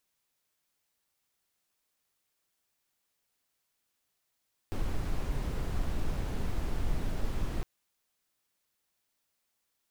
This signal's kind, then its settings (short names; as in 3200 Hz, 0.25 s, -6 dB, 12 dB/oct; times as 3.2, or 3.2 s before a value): noise brown, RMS -30 dBFS 2.91 s